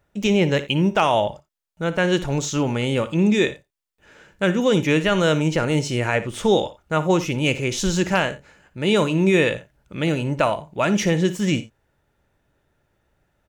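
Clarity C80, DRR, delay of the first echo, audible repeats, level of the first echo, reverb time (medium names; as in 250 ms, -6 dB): no reverb, no reverb, 58 ms, 1, -14.5 dB, no reverb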